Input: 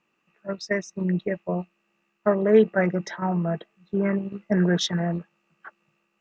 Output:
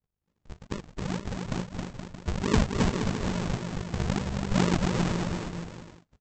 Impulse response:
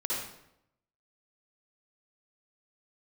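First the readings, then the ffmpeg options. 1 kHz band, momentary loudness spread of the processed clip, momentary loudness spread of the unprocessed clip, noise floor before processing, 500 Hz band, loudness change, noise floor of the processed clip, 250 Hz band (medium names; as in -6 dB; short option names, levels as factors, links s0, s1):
-1.5 dB, 14 LU, 15 LU, -74 dBFS, -11.0 dB, -5.0 dB, -81 dBFS, -4.5 dB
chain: -af "highpass=90,equalizer=f=2300:w=7.3:g=4.5,bandreject=f=1200:w=20,dynaudnorm=f=240:g=9:m=3.76,tremolo=f=50:d=0.824,aresample=16000,acrusher=samples=40:mix=1:aa=0.000001:lfo=1:lforange=40:lforate=2.3,aresample=44100,aecho=1:1:270|472.5|624.4|738.3|823.7:0.631|0.398|0.251|0.158|0.1,volume=0.376"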